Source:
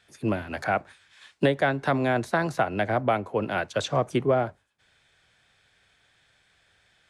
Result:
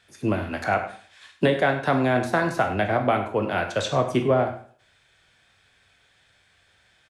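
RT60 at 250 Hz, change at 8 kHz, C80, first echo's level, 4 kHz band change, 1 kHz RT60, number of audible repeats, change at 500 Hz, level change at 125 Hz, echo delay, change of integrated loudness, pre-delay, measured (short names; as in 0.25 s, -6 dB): 0.50 s, +2.5 dB, 11.5 dB, -13.5 dB, +2.5 dB, 0.45 s, 1, +2.5 dB, +2.5 dB, 99 ms, +2.5 dB, 7 ms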